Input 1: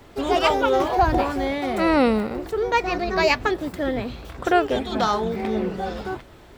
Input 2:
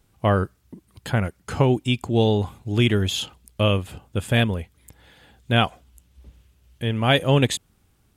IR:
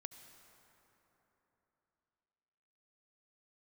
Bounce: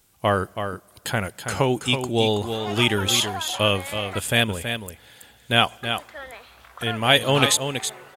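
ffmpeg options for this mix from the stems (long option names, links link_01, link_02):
-filter_complex "[0:a]lowpass=frequency=1700:poles=1,alimiter=limit=-15dB:level=0:latency=1:release=84,highpass=1100,adelay=2350,volume=0.5dB,asplit=3[link_01][link_02][link_03];[link_01]atrim=end=4.19,asetpts=PTS-STARTPTS,afade=type=out:start_time=4.186:duration=0.004:curve=hsin[link_04];[link_02]atrim=start=4.19:end=5.83,asetpts=PTS-STARTPTS,volume=0[link_05];[link_03]atrim=start=5.83,asetpts=PTS-STARTPTS,afade=type=in:duration=0.004:curve=hsin[link_06];[link_04][link_05][link_06]concat=n=3:v=0:a=1[link_07];[1:a]highshelf=frequency=4500:gain=9.5,volume=1dB,asplit=3[link_08][link_09][link_10];[link_09]volume=-14dB[link_11];[link_10]volume=-7dB[link_12];[2:a]atrim=start_sample=2205[link_13];[link_11][link_13]afir=irnorm=-1:irlink=0[link_14];[link_12]aecho=0:1:326:1[link_15];[link_07][link_08][link_14][link_15]amix=inputs=4:normalize=0,lowshelf=frequency=300:gain=-9.5"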